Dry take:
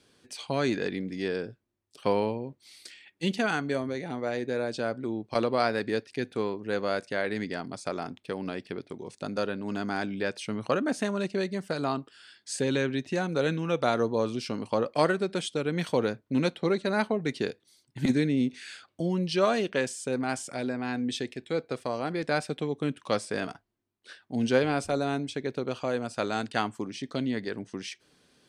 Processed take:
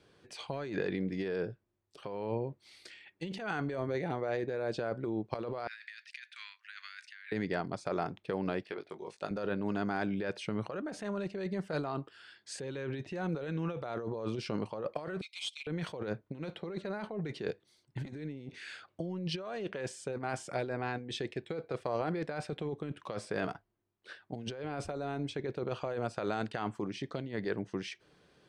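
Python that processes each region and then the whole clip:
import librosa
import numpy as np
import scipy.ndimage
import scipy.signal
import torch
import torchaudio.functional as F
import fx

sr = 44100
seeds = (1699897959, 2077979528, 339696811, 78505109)

y = fx.chain(x, sr, fx.steep_highpass(hz=1700.0, slope=36),
    fx.high_shelf(hz=7100.0, db=-6.0),
    fx.over_compress(threshold_db=-47.0, ratio=-1.0), at=(5.67, 7.32))
y = fx.chain(y, sr, fx.highpass(hz=710.0, slope=6),
    fx.doubler(ms=19.0, db=-6.5), at=(8.63, 9.31))
y = fx.chain(y, sr, fx.brickwall_highpass(low_hz=2000.0),
    fx.comb(ms=6.6, depth=0.76),
    fx.doppler_dist(depth_ms=0.49), at=(15.21, 15.67))
y = fx.lowpass(y, sr, hz=1800.0, slope=6)
y = fx.over_compress(y, sr, threshold_db=-33.0, ratio=-1.0)
y = fx.peak_eq(y, sr, hz=250.0, db=-12.0, octaves=0.24)
y = F.gain(torch.from_numpy(y), -1.5).numpy()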